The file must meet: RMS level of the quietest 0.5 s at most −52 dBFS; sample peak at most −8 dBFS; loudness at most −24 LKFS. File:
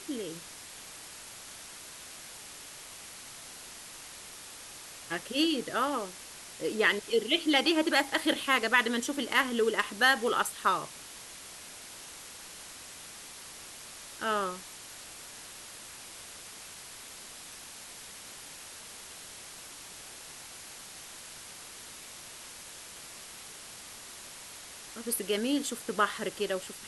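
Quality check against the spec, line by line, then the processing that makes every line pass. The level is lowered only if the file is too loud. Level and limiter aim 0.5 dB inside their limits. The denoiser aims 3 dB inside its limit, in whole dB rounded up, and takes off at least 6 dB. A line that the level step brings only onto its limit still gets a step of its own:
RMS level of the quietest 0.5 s −47 dBFS: out of spec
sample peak −9.5 dBFS: in spec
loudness −29.0 LKFS: in spec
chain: broadband denoise 8 dB, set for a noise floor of −47 dBFS

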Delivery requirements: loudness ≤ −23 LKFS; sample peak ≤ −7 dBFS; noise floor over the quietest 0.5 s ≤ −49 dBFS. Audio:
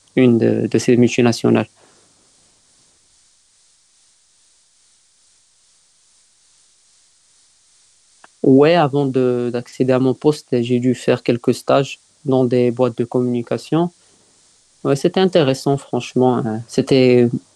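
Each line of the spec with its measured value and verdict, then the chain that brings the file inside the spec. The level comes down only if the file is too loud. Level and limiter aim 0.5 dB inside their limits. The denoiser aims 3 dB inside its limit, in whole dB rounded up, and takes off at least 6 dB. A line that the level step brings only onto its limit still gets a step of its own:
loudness −16.5 LKFS: out of spec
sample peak −2.0 dBFS: out of spec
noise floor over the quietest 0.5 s −56 dBFS: in spec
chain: level −7 dB

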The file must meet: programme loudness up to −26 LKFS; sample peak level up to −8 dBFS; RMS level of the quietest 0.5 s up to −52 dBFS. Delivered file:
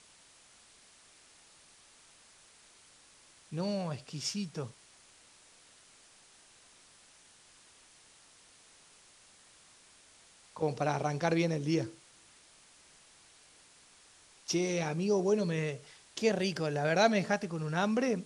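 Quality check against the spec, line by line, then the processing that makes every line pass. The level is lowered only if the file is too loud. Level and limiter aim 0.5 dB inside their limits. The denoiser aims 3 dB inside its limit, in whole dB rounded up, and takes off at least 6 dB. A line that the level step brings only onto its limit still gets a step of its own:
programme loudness −32.0 LKFS: in spec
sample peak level −12.5 dBFS: in spec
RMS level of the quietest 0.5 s −61 dBFS: in spec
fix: no processing needed

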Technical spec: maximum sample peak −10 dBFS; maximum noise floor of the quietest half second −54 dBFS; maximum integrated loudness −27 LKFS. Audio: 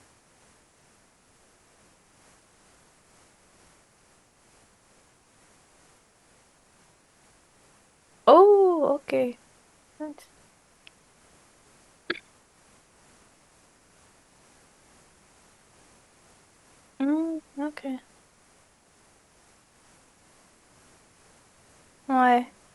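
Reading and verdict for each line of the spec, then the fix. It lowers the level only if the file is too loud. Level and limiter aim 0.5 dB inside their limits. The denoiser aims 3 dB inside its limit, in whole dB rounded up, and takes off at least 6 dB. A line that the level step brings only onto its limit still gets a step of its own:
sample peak −4.0 dBFS: out of spec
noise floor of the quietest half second −61 dBFS: in spec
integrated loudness −23.5 LKFS: out of spec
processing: level −4 dB
brickwall limiter −10.5 dBFS

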